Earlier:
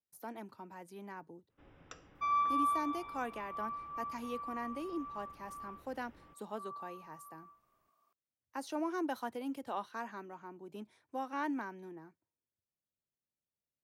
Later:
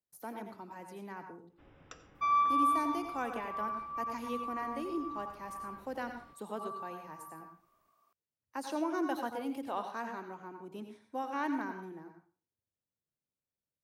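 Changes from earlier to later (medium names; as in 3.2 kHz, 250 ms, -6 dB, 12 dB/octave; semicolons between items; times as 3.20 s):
second sound +3.5 dB; reverb: on, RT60 0.40 s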